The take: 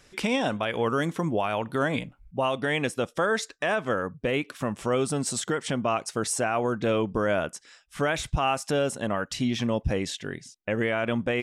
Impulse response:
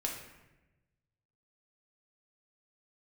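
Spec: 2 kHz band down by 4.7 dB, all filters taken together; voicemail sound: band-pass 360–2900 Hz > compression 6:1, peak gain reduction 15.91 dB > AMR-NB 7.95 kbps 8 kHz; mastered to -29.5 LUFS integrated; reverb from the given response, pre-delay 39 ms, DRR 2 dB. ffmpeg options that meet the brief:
-filter_complex "[0:a]equalizer=f=2000:t=o:g=-5.5,asplit=2[s0][s1];[1:a]atrim=start_sample=2205,adelay=39[s2];[s1][s2]afir=irnorm=-1:irlink=0,volume=0.596[s3];[s0][s3]amix=inputs=2:normalize=0,highpass=360,lowpass=2900,acompressor=threshold=0.0158:ratio=6,volume=3.55" -ar 8000 -c:a libopencore_amrnb -b:a 7950

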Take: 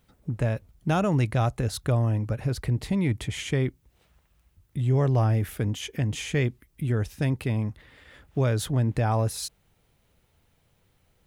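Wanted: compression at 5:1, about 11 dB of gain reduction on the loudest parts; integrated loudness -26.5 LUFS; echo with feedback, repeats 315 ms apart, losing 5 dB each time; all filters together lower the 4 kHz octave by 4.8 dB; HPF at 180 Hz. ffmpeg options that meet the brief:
-af "highpass=180,equalizer=f=4000:t=o:g=-6.5,acompressor=threshold=0.02:ratio=5,aecho=1:1:315|630|945|1260|1575|1890|2205:0.562|0.315|0.176|0.0988|0.0553|0.031|0.0173,volume=3.98"

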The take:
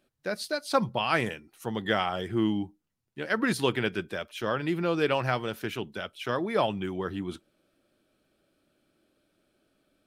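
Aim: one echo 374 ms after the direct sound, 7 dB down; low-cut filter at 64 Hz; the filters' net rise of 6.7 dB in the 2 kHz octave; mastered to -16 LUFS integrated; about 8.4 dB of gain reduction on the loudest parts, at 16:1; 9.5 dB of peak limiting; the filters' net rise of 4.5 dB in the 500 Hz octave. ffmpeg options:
-af "highpass=64,equalizer=f=500:t=o:g=5,equalizer=f=2000:t=o:g=8.5,acompressor=threshold=0.0708:ratio=16,alimiter=limit=0.1:level=0:latency=1,aecho=1:1:374:0.447,volume=6.31"

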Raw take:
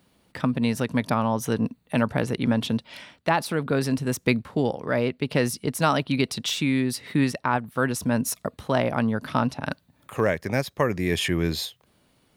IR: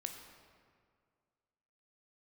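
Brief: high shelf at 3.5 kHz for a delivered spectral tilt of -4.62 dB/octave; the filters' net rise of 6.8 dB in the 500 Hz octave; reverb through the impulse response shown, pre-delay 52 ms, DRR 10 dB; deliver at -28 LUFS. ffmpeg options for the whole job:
-filter_complex "[0:a]equalizer=f=500:t=o:g=8,highshelf=f=3500:g=7.5,asplit=2[s0][s1];[1:a]atrim=start_sample=2205,adelay=52[s2];[s1][s2]afir=irnorm=-1:irlink=0,volume=0.398[s3];[s0][s3]amix=inputs=2:normalize=0,volume=0.447"

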